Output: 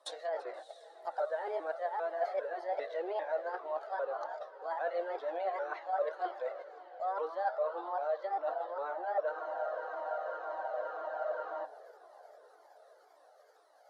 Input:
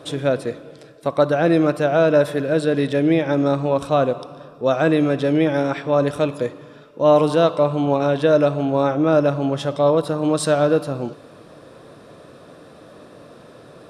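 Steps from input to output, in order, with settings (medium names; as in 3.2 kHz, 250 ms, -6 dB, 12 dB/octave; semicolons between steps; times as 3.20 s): sawtooth pitch modulation +5 st, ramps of 399 ms; steep high-pass 500 Hz 36 dB/octave; gate -40 dBFS, range -16 dB; peaking EQ 2.6 kHz -11 dB 0.71 oct; reverse; compression 6:1, threshold -32 dBFS, peak gain reduction 19.5 dB; reverse; low-pass that closes with the level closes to 2.2 kHz, closed at -33 dBFS; on a send: echo that smears into a reverb 647 ms, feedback 51%, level -15 dB; on the sum: spectral freeze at 9.34 s, 2.31 s; Shepard-style flanger falling 1.9 Hz; trim +3.5 dB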